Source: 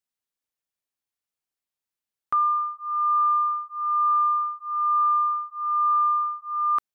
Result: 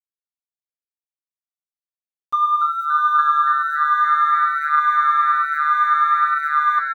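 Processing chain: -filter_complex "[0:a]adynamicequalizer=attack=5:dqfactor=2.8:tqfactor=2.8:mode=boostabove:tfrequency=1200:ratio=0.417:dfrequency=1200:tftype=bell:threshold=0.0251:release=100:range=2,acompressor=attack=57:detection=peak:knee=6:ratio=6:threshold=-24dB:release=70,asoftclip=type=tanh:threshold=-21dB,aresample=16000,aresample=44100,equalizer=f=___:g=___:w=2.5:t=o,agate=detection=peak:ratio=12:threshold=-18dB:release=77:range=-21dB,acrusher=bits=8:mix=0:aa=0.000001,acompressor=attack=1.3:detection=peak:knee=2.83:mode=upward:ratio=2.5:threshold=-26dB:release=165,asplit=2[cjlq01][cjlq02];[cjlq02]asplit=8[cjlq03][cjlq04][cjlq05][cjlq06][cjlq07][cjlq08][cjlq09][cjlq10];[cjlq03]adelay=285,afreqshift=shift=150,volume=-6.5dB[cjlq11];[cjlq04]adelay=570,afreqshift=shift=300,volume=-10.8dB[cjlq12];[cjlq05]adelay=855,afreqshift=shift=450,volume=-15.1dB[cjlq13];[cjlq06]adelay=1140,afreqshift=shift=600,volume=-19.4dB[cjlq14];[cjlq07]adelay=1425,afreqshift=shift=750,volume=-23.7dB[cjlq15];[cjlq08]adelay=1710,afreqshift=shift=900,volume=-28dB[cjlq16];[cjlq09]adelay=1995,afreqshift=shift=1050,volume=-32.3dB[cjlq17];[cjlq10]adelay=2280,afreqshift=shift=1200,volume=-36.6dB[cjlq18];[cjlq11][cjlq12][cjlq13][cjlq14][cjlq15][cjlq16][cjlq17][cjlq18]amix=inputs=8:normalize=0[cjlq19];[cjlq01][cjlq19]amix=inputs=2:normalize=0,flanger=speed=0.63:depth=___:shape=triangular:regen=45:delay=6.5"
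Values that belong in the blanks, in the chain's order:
820, 14, 6.4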